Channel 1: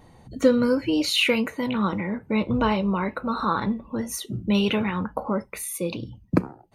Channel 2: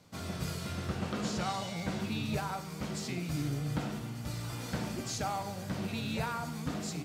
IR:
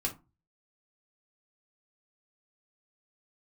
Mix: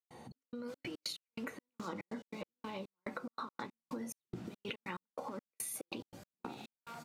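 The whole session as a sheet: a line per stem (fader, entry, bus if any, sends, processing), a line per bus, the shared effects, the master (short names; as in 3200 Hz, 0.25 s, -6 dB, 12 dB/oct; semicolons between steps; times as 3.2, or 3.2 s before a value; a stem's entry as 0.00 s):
-5.0 dB, 0.00 s, send -12 dB, negative-ratio compressor -27 dBFS, ratio -0.5
-9.0 dB, 0.55 s, no send, one-sided fold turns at -32.5 dBFS; limiter -28.5 dBFS, peak gain reduction 7.5 dB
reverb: on, RT60 0.25 s, pre-delay 3 ms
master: HPF 200 Hz 12 dB/oct; step gate ".xx..xx.x.x." 142 bpm -60 dB; compressor 6:1, threshold -40 dBFS, peak gain reduction 14.5 dB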